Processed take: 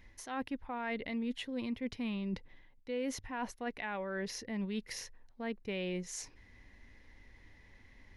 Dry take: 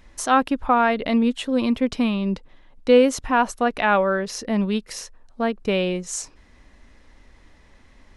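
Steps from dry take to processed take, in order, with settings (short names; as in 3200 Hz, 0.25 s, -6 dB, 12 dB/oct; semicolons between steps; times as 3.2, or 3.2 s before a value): reverse; compressor 5:1, threshold -27 dBFS, peak gain reduction 15.5 dB; reverse; thirty-one-band EQ 100 Hz +9 dB, 630 Hz -5 dB, 1250 Hz -8 dB, 2000 Hz +8 dB, 8000 Hz -10 dB; gain -8 dB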